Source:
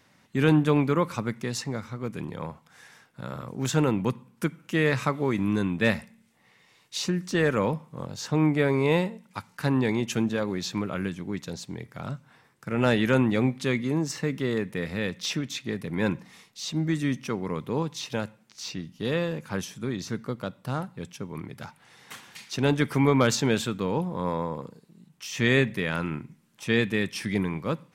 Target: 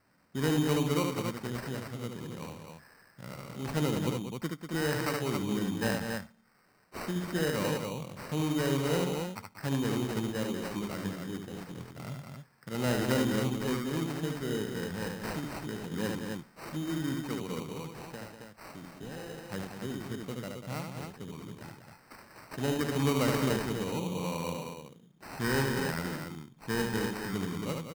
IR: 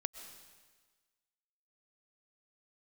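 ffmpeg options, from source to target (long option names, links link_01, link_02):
-filter_complex "[0:a]asettb=1/sr,asplit=3[link_01][link_02][link_03];[link_01]atrim=end=17.624[link_04];[link_02]atrim=start=17.62:end=19.41,asetpts=PTS-STARTPTS,afade=type=in:duration=0.004:curve=qsin,afade=type=out:start_time=1.786:duration=0.004:curve=qsin,acrossover=split=240|1200|4400[link_05][link_06][link_07][link_08];[link_05]acompressor=threshold=-42dB:ratio=4[link_09];[link_06]acompressor=threshold=-37dB:ratio=4[link_10];[link_07]acompressor=threshold=-39dB:ratio=4[link_11];[link_08]acompressor=threshold=-45dB:ratio=4[link_12];[link_09][link_10][link_11][link_12]amix=inputs=4:normalize=0[link_13];[link_03]atrim=start=19.406[link_14];[link_04][link_13]acrossfade=duration=0.004:curve1=hsin:curve2=qsin[link_15];[link_15][link_14]acrossfade=duration=0.004:curve1=qsin:curve2=hsin,aecho=1:1:72.89|192.4|271.1:0.631|0.398|0.562,acrusher=samples=13:mix=1:aa=0.000001,volume=-8.5dB"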